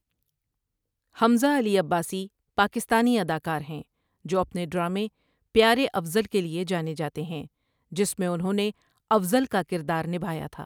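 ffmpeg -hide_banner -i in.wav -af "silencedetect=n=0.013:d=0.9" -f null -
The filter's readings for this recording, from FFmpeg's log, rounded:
silence_start: 0.00
silence_end: 1.17 | silence_duration: 1.17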